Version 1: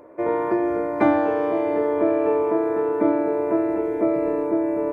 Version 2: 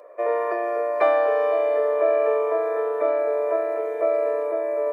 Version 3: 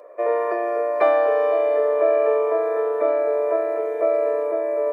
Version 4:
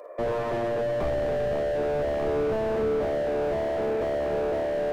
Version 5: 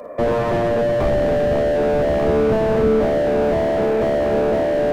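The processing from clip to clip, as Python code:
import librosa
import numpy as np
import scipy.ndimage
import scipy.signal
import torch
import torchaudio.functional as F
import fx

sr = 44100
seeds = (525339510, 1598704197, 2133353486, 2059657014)

y1 = scipy.signal.sosfilt(scipy.signal.butter(4, 450.0, 'highpass', fs=sr, output='sos'), x)
y1 = y1 + 0.65 * np.pad(y1, (int(1.7 * sr / 1000.0), 0))[:len(y1)]
y2 = fx.low_shelf(y1, sr, hz=440.0, db=5.0)
y3 = fx.room_early_taps(y2, sr, ms=(44, 55), db=(-12.5, -9.0))
y3 = fx.slew_limit(y3, sr, full_power_hz=27.0)
y3 = y3 * librosa.db_to_amplitude(1.0)
y4 = fx.octave_divider(y3, sr, octaves=1, level_db=-1.0)
y4 = y4 * librosa.db_to_amplitude(8.5)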